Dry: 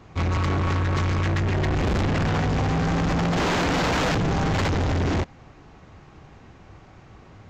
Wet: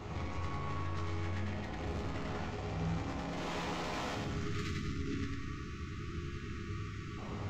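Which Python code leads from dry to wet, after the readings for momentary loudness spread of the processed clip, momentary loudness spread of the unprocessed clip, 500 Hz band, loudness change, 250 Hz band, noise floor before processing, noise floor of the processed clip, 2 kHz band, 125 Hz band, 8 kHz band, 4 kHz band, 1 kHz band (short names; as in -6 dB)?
5 LU, 2 LU, -15.0 dB, -16.5 dB, -14.5 dB, -49 dBFS, -44 dBFS, -15.0 dB, -15.0 dB, -14.5 dB, -14.5 dB, -15.0 dB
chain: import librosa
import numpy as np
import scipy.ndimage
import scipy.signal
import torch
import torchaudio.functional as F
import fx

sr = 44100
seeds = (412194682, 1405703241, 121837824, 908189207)

y = fx.notch(x, sr, hz=1600.0, q=12.0)
y = fx.spec_erase(y, sr, start_s=4.25, length_s=2.93, low_hz=410.0, high_hz=1100.0)
y = fx.over_compress(y, sr, threshold_db=-33.0, ratio=-1.0)
y = fx.resonator_bank(y, sr, root=37, chord='minor', decay_s=0.31)
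y = fx.echo_feedback(y, sr, ms=98, feedback_pct=46, wet_db=-3)
y = y * 10.0 ** (5.0 / 20.0)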